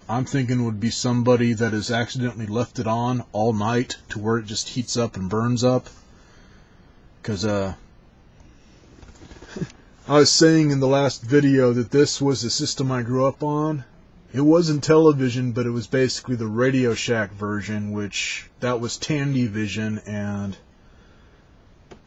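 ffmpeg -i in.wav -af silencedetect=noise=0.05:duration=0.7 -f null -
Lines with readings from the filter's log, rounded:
silence_start: 5.86
silence_end: 7.25 | silence_duration: 1.38
silence_start: 7.73
silence_end: 9.57 | silence_duration: 1.84
silence_start: 20.51
silence_end: 22.07 | silence_duration: 1.56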